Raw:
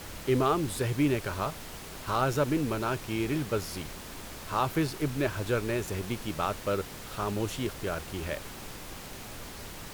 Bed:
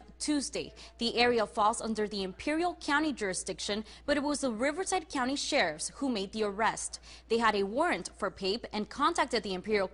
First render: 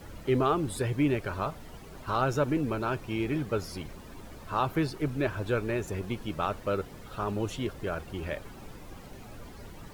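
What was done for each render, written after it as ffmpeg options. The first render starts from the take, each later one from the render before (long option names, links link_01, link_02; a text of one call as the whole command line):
ffmpeg -i in.wav -af "afftdn=noise_reduction=12:noise_floor=-43" out.wav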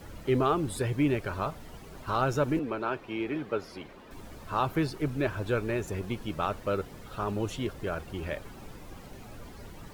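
ffmpeg -i in.wav -filter_complex "[0:a]asettb=1/sr,asplit=3[link_01][link_02][link_03];[link_01]atrim=end=2.594[link_04];[link_02]atrim=start=2.59:end=4.11,asetpts=PTS-STARTPTS,afade=type=in:duration=0.004:curve=qsin,afade=type=out:start_time=1.516:duration=0.004:curve=qsin,acrossover=split=230 4000:gain=0.224 1 0.224[link_05][link_06][link_07];[link_05][link_06][link_07]amix=inputs=3:normalize=0[link_08];[link_03]atrim=start=4.106[link_09];[link_04][link_08]acrossfade=duration=0.004:curve1=hsin:curve2=qsin[link_10];[link_10][link_09]acrossfade=duration=0.004:curve1=qsin:curve2=hsin" out.wav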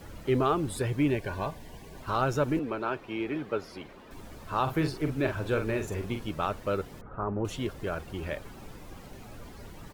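ffmpeg -i in.wav -filter_complex "[0:a]asettb=1/sr,asplit=3[link_01][link_02][link_03];[link_01]atrim=end=1.104[link_04];[link_02]atrim=start=1.1:end=2.01,asetpts=PTS-STARTPTS,afade=type=in:duration=0.004:curve=qsin,afade=type=out:start_time=0.906:duration=0.004:curve=qsin,asuperstop=centerf=1300:order=20:qfactor=5.2[link_05];[link_03]atrim=start=2.006[link_06];[link_04][link_05]acrossfade=duration=0.004:curve1=hsin:curve2=qsin[link_07];[link_07][link_06]acrossfade=duration=0.004:curve1=qsin:curve2=hsin,asplit=3[link_08][link_09][link_10];[link_08]afade=type=out:start_time=4.66:duration=0.02[link_11];[link_09]asplit=2[link_12][link_13];[link_13]adelay=45,volume=-7dB[link_14];[link_12][link_14]amix=inputs=2:normalize=0,afade=type=in:start_time=4.66:duration=0.02,afade=type=out:start_time=6.29:duration=0.02[link_15];[link_10]afade=type=in:start_time=6.29:duration=0.02[link_16];[link_11][link_15][link_16]amix=inputs=3:normalize=0,asettb=1/sr,asplit=3[link_17][link_18][link_19];[link_17]atrim=end=7.014[link_20];[link_18]atrim=start=7.01:end=7.45,asetpts=PTS-STARTPTS,afade=type=in:duration=0.004:curve=qsin,afade=type=out:start_time=0.436:duration=0.004:curve=qsin,lowpass=frequency=1500:width=0.5412,lowpass=frequency=1500:width=1.3066[link_21];[link_19]atrim=start=7.446[link_22];[link_20][link_21]acrossfade=duration=0.004:curve1=hsin:curve2=qsin[link_23];[link_23][link_22]acrossfade=duration=0.004:curve1=qsin:curve2=hsin" out.wav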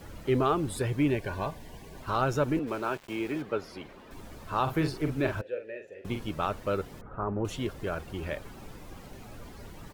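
ffmpeg -i in.wav -filter_complex "[0:a]asplit=3[link_01][link_02][link_03];[link_01]afade=type=out:start_time=2.66:duration=0.02[link_04];[link_02]aeval=exprs='val(0)*gte(abs(val(0)),0.00668)':channel_layout=same,afade=type=in:start_time=2.66:duration=0.02,afade=type=out:start_time=3.41:duration=0.02[link_05];[link_03]afade=type=in:start_time=3.41:duration=0.02[link_06];[link_04][link_05][link_06]amix=inputs=3:normalize=0,asettb=1/sr,asplit=3[link_07][link_08][link_09];[link_07]atrim=end=5.414[link_10];[link_08]atrim=start=5.41:end=6.05,asetpts=PTS-STARTPTS,afade=type=in:duration=0.004:curve=qsin,afade=type=out:start_time=0.636:duration=0.004:curve=qsin,asplit=3[link_11][link_12][link_13];[link_11]bandpass=frequency=530:width_type=q:width=8,volume=0dB[link_14];[link_12]bandpass=frequency=1840:width_type=q:width=8,volume=-6dB[link_15];[link_13]bandpass=frequency=2480:width_type=q:width=8,volume=-9dB[link_16];[link_14][link_15][link_16]amix=inputs=3:normalize=0[link_17];[link_09]atrim=start=6.046[link_18];[link_10][link_17]acrossfade=duration=0.004:curve1=hsin:curve2=qsin[link_19];[link_19][link_18]acrossfade=duration=0.004:curve1=qsin:curve2=hsin" out.wav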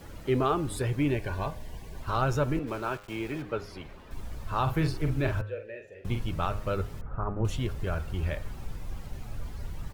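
ffmpeg -i in.wav -af "bandreject=frequency=102.5:width_type=h:width=4,bandreject=frequency=205:width_type=h:width=4,bandreject=frequency=307.5:width_type=h:width=4,bandreject=frequency=410:width_type=h:width=4,bandreject=frequency=512.5:width_type=h:width=4,bandreject=frequency=615:width_type=h:width=4,bandreject=frequency=717.5:width_type=h:width=4,bandreject=frequency=820:width_type=h:width=4,bandreject=frequency=922.5:width_type=h:width=4,bandreject=frequency=1025:width_type=h:width=4,bandreject=frequency=1127.5:width_type=h:width=4,bandreject=frequency=1230:width_type=h:width=4,bandreject=frequency=1332.5:width_type=h:width=4,bandreject=frequency=1435:width_type=h:width=4,bandreject=frequency=1537.5:width_type=h:width=4,bandreject=frequency=1640:width_type=h:width=4,bandreject=frequency=1742.5:width_type=h:width=4,bandreject=frequency=1845:width_type=h:width=4,bandreject=frequency=1947.5:width_type=h:width=4,bandreject=frequency=2050:width_type=h:width=4,bandreject=frequency=2152.5:width_type=h:width=4,bandreject=frequency=2255:width_type=h:width=4,bandreject=frequency=2357.5:width_type=h:width=4,bandreject=frequency=2460:width_type=h:width=4,bandreject=frequency=2562.5:width_type=h:width=4,bandreject=frequency=2665:width_type=h:width=4,bandreject=frequency=2767.5:width_type=h:width=4,bandreject=frequency=2870:width_type=h:width=4,asubboost=boost=4:cutoff=130" out.wav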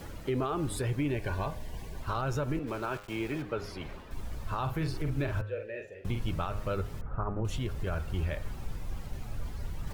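ffmpeg -i in.wav -af "alimiter=limit=-22.5dB:level=0:latency=1:release=133,areverse,acompressor=mode=upward:threshold=-34dB:ratio=2.5,areverse" out.wav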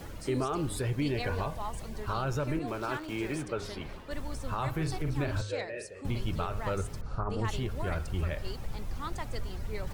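ffmpeg -i in.wav -i bed.wav -filter_complex "[1:a]volume=-12dB[link_01];[0:a][link_01]amix=inputs=2:normalize=0" out.wav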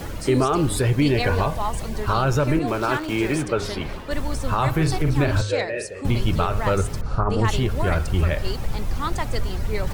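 ffmpeg -i in.wav -af "volume=11.5dB" out.wav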